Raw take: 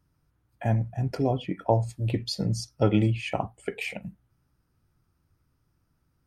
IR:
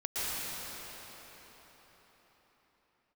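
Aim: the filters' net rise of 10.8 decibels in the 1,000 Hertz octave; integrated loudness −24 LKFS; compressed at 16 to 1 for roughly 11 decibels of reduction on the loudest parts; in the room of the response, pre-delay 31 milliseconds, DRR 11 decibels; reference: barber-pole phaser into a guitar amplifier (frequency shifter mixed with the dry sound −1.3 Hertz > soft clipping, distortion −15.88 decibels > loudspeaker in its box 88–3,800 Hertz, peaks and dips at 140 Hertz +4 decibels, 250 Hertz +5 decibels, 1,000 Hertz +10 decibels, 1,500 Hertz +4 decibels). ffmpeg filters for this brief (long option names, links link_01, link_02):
-filter_complex "[0:a]equalizer=frequency=1000:width_type=o:gain=8.5,acompressor=threshold=-23dB:ratio=16,asplit=2[link_01][link_02];[1:a]atrim=start_sample=2205,adelay=31[link_03];[link_02][link_03]afir=irnorm=-1:irlink=0,volume=-19dB[link_04];[link_01][link_04]amix=inputs=2:normalize=0,asplit=2[link_05][link_06];[link_06]afreqshift=-1.3[link_07];[link_05][link_07]amix=inputs=2:normalize=1,asoftclip=threshold=-23.5dB,highpass=88,equalizer=frequency=140:width_type=q:width=4:gain=4,equalizer=frequency=250:width_type=q:width=4:gain=5,equalizer=frequency=1000:width_type=q:width=4:gain=10,equalizer=frequency=1500:width_type=q:width=4:gain=4,lowpass=frequency=3800:width=0.5412,lowpass=frequency=3800:width=1.3066,volume=10.5dB"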